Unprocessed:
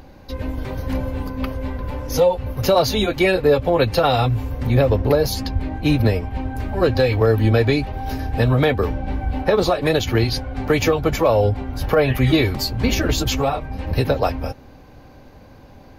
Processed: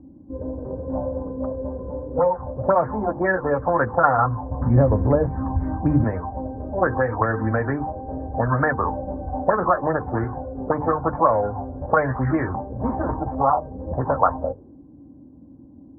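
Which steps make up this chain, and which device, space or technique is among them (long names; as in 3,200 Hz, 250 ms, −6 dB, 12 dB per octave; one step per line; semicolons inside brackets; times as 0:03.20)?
Butterworth low-pass 1,900 Hz 72 dB per octave
mains-hum notches 50/100/150/200/250/300/350/400/450/500 Hz
0:04.51–0:06.04: tilt shelving filter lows +7.5 dB, about 830 Hz
envelope filter bass rig (envelope-controlled low-pass 270–2,900 Hz up, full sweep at −10.5 dBFS; loudspeaker in its box 68–2,300 Hz, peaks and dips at 110 Hz −4 dB, 420 Hz −7 dB, 1,000 Hz +6 dB, 1,900 Hz −6 dB)
level −3.5 dB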